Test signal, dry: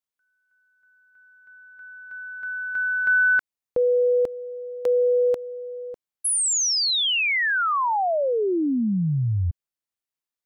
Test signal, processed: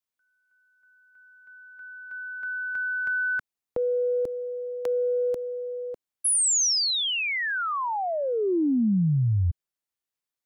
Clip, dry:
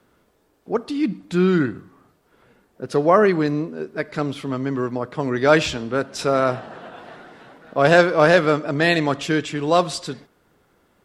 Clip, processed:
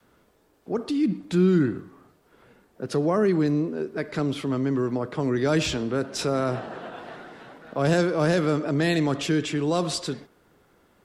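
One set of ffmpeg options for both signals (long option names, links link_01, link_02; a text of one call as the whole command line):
ffmpeg -i in.wav -filter_complex "[0:a]adynamicequalizer=threshold=0.0316:dfrequency=360:dqfactor=1.5:tfrequency=360:tqfactor=1.5:attack=5:release=100:ratio=0.375:range=2.5:mode=boostabove:tftype=bell,acrossover=split=230|5400[link_01][link_02][link_03];[link_02]acompressor=threshold=-30dB:ratio=2.5:attack=5.9:release=38:knee=2.83:detection=peak[link_04];[link_01][link_04][link_03]amix=inputs=3:normalize=0" out.wav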